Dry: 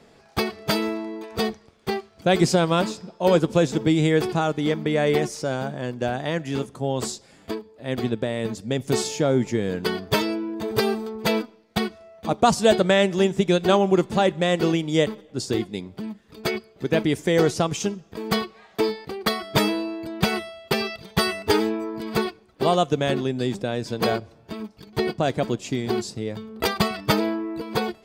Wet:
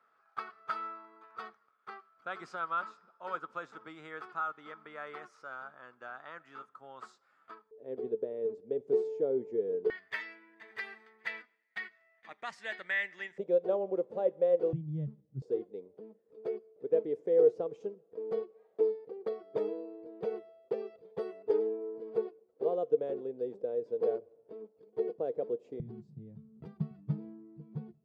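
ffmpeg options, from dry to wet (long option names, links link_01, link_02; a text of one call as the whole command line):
ffmpeg -i in.wav -af "asetnsamples=nb_out_samples=441:pad=0,asendcmd='7.71 bandpass f 440;9.9 bandpass f 1900;13.38 bandpass f 510;14.73 bandpass f 140;15.42 bandpass f 470;25.8 bandpass f 150',bandpass=frequency=1300:width_type=q:width=9.5:csg=0" out.wav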